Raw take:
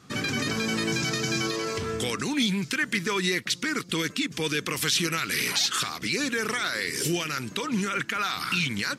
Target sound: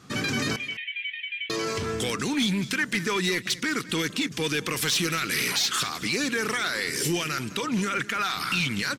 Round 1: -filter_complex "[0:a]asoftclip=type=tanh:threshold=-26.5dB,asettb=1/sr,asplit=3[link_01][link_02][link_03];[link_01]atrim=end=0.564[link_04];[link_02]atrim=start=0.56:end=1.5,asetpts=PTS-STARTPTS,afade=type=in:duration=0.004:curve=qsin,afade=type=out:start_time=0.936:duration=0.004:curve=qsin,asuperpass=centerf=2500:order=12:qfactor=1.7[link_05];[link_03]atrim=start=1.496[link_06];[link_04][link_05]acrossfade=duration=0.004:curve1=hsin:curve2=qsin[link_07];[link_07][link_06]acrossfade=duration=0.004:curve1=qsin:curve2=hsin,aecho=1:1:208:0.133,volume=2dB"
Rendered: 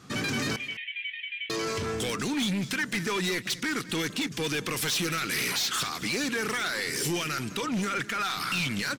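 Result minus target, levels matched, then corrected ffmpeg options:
soft clipping: distortion +8 dB
-filter_complex "[0:a]asoftclip=type=tanh:threshold=-19.5dB,asettb=1/sr,asplit=3[link_01][link_02][link_03];[link_01]atrim=end=0.564[link_04];[link_02]atrim=start=0.56:end=1.5,asetpts=PTS-STARTPTS,afade=type=in:duration=0.004:curve=qsin,afade=type=out:start_time=0.936:duration=0.004:curve=qsin,asuperpass=centerf=2500:order=12:qfactor=1.7[link_05];[link_03]atrim=start=1.496[link_06];[link_04][link_05]acrossfade=duration=0.004:curve1=hsin:curve2=qsin[link_07];[link_07][link_06]acrossfade=duration=0.004:curve1=qsin:curve2=hsin,aecho=1:1:208:0.133,volume=2dB"

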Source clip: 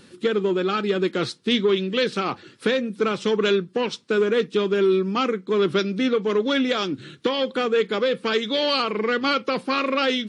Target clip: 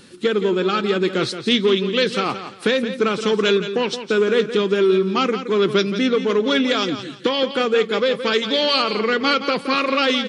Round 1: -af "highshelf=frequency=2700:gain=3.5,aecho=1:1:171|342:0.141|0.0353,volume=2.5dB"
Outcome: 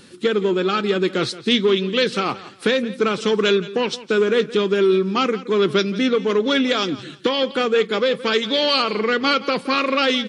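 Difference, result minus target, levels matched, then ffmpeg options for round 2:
echo-to-direct −6.5 dB
-af "highshelf=frequency=2700:gain=3.5,aecho=1:1:171|342|513:0.299|0.0746|0.0187,volume=2.5dB"

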